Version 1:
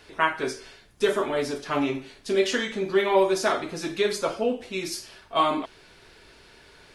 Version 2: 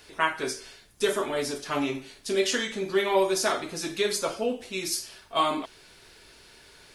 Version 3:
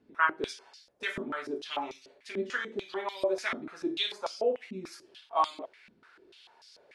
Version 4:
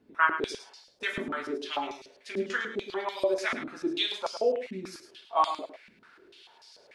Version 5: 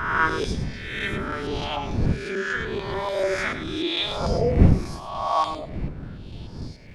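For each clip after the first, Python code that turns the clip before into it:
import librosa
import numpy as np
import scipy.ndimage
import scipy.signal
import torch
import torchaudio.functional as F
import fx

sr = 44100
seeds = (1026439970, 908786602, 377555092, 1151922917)

y1 = fx.high_shelf(x, sr, hz=4900.0, db=11.5)
y1 = y1 * librosa.db_to_amplitude(-3.0)
y2 = fx.filter_held_bandpass(y1, sr, hz=6.8, low_hz=230.0, high_hz=5100.0)
y2 = y2 * librosa.db_to_amplitude(5.0)
y3 = y2 + 10.0 ** (-10.0 / 20.0) * np.pad(y2, (int(106 * sr / 1000.0), 0))[:len(y2)]
y3 = y3 * librosa.db_to_amplitude(2.0)
y4 = fx.spec_swells(y3, sr, rise_s=1.18)
y4 = fx.dmg_wind(y4, sr, seeds[0], corner_hz=160.0, level_db=-27.0)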